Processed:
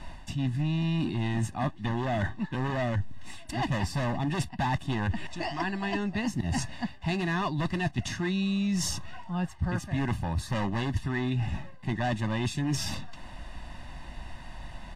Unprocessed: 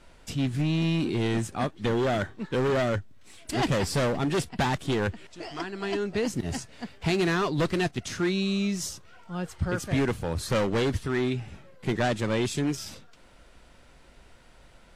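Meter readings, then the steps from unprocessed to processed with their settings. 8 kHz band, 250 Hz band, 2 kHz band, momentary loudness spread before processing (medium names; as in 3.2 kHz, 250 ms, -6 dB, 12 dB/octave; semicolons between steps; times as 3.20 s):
-1.5 dB, -2.0 dB, -2.0 dB, 10 LU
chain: treble shelf 5.1 kHz -10 dB; comb 1.1 ms, depth 89%; reverse; compression 6:1, threshold -36 dBFS, peak gain reduction 17.5 dB; reverse; trim +9 dB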